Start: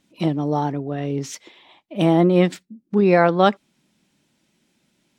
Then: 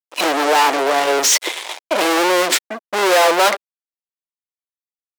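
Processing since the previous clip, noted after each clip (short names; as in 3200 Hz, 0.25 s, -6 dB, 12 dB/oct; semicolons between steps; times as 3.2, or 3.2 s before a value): fuzz box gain 41 dB, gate -50 dBFS; HPF 410 Hz 24 dB/oct; gain +2.5 dB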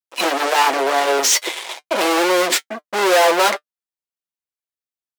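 notch comb 150 Hz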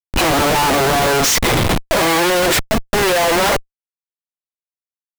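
in parallel at +1.5 dB: limiter -10.5 dBFS, peak gain reduction 8.5 dB; on the sum: Schmitt trigger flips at -19 dBFS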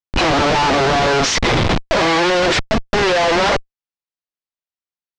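LPF 5800 Hz 24 dB/oct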